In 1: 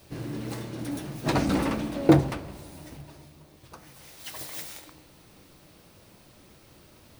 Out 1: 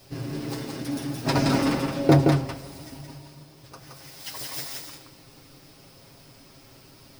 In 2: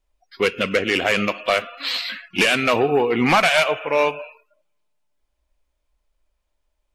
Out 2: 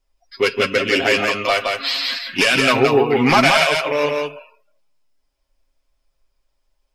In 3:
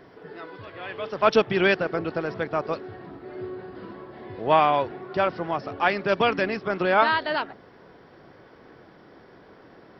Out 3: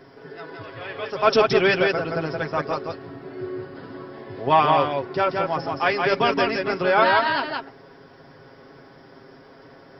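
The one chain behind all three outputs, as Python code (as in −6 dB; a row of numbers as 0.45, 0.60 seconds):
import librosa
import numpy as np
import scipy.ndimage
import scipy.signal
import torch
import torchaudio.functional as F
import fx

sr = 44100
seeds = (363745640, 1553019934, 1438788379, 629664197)

y = fx.peak_eq(x, sr, hz=5100.0, db=9.5, octaves=0.21)
y = y + 0.62 * np.pad(y, (int(7.4 * sr / 1000.0), 0))[:len(y)]
y = y + 10.0 ** (-3.5 / 20.0) * np.pad(y, (int(171 * sr / 1000.0), 0))[:len(y)]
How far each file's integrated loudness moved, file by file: +2.5, +3.0, +2.5 LU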